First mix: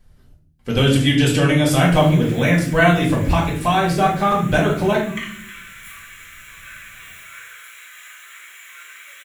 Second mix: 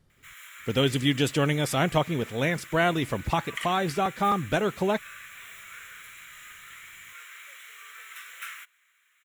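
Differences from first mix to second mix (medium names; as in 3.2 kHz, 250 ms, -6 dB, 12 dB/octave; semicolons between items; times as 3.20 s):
background: entry -1.60 s; reverb: off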